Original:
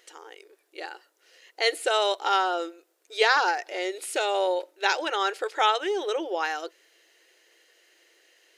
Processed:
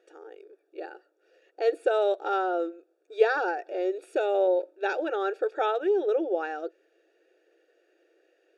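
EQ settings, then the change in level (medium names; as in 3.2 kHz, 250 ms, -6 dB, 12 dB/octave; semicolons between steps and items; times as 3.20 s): boxcar filter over 43 samples; high-pass 250 Hz; bass shelf 320 Hz -4.5 dB; +8.5 dB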